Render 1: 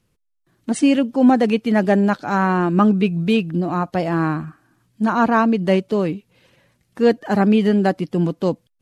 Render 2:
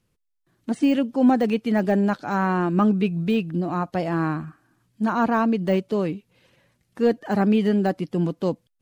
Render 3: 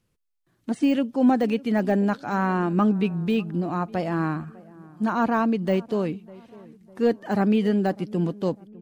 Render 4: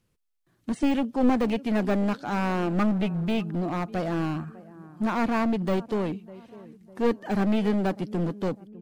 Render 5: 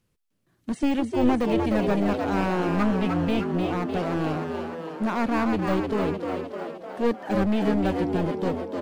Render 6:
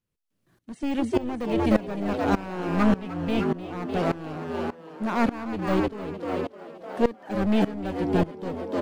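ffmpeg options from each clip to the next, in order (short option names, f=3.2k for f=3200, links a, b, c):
-af "deesser=0.8,volume=-4dB"
-filter_complex "[0:a]asplit=2[a][b];[b]adelay=601,lowpass=f=1.1k:p=1,volume=-21dB,asplit=2[c][d];[d]adelay=601,lowpass=f=1.1k:p=1,volume=0.5,asplit=2[e][f];[f]adelay=601,lowpass=f=1.1k:p=1,volume=0.5,asplit=2[g][h];[h]adelay=601,lowpass=f=1.1k:p=1,volume=0.5[i];[a][c][e][g][i]amix=inputs=5:normalize=0,volume=-1.5dB"
-af "aeval=exprs='clip(val(0),-1,0.0562)':c=same"
-filter_complex "[0:a]asplit=9[a][b][c][d][e][f][g][h][i];[b]adelay=304,afreqshift=83,volume=-5dB[j];[c]adelay=608,afreqshift=166,volume=-9.6dB[k];[d]adelay=912,afreqshift=249,volume=-14.2dB[l];[e]adelay=1216,afreqshift=332,volume=-18.7dB[m];[f]adelay=1520,afreqshift=415,volume=-23.3dB[n];[g]adelay=1824,afreqshift=498,volume=-27.9dB[o];[h]adelay=2128,afreqshift=581,volume=-32.5dB[p];[i]adelay=2432,afreqshift=664,volume=-37.1dB[q];[a][j][k][l][m][n][o][p][q]amix=inputs=9:normalize=0"
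-af "aeval=exprs='val(0)*pow(10,-20*if(lt(mod(-1.7*n/s,1),2*abs(-1.7)/1000),1-mod(-1.7*n/s,1)/(2*abs(-1.7)/1000),(mod(-1.7*n/s,1)-2*abs(-1.7)/1000)/(1-2*abs(-1.7)/1000))/20)':c=same,volume=5.5dB"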